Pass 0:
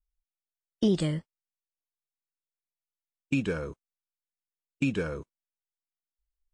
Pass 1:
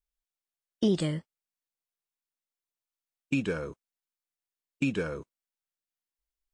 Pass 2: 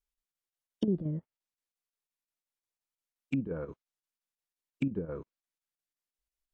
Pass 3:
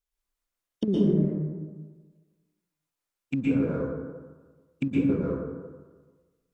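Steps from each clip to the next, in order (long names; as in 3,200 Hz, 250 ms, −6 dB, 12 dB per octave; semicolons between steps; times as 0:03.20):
low-shelf EQ 74 Hz −10 dB
square-wave tremolo 5.7 Hz, depth 60%, duty 80%; treble cut that deepens with the level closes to 360 Hz, closed at −26 dBFS; level −1.5 dB
in parallel at −10 dB: dead-zone distortion −48.5 dBFS; on the sum: dense smooth reverb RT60 1.4 s, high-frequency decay 0.4×, pre-delay 105 ms, DRR −6 dB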